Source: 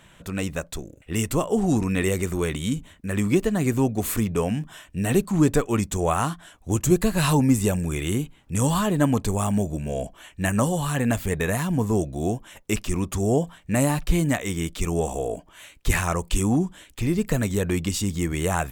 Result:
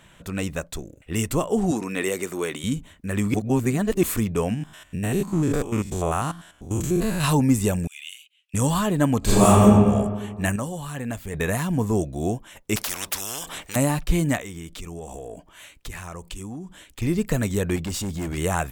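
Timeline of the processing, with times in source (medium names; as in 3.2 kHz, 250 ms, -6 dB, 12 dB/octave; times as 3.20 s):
1.71–2.64 s: high-pass 280 Hz
3.34–4.03 s: reverse
4.54–7.24 s: spectrogram pixelated in time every 100 ms
7.87–8.54 s: ladder high-pass 2.5 kHz, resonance 65%
9.19–9.62 s: reverb throw, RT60 1.6 s, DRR -12 dB
10.56–11.34 s: gain -7.5 dB
12.76–13.76 s: spectrum-flattening compressor 10:1
14.40–17.02 s: compression 5:1, threshold -33 dBFS
17.76–18.38 s: hard clipper -25.5 dBFS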